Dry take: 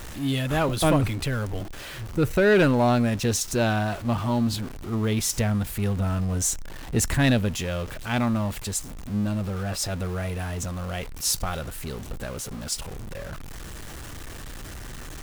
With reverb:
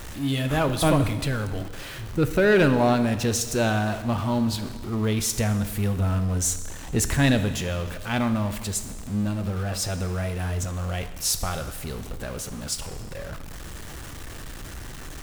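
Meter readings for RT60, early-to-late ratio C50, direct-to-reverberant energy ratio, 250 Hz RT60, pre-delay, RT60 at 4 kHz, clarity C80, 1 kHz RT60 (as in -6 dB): 1.5 s, 11.0 dB, 9.5 dB, 1.5 s, 6 ms, 1.4 s, 12.5 dB, 1.5 s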